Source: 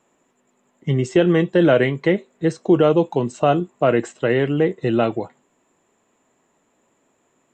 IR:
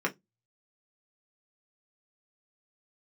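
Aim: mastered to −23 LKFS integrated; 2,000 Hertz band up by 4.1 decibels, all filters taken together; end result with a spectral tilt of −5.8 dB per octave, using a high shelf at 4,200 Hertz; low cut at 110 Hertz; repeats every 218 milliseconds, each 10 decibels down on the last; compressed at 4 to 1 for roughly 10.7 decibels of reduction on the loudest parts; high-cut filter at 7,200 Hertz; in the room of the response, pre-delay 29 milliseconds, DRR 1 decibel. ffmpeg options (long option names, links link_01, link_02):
-filter_complex "[0:a]highpass=110,lowpass=7200,equalizer=frequency=2000:width_type=o:gain=4,highshelf=frequency=4200:gain=4.5,acompressor=threshold=-23dB:ratio=4,aecho=1:1:218|436|654|872:0.316|0.101|0.0324|0.0104,asplit=2[link_01][link_02];[1:a]atrim=start_sample=2205,adelay=29[link_03];[link_02][link_03]afir=irnorm=-1:irlink=0,volume=-9.5dB[link_04];[link_01][link_04]amix=inputs=2:normalize=0,volume=1dB"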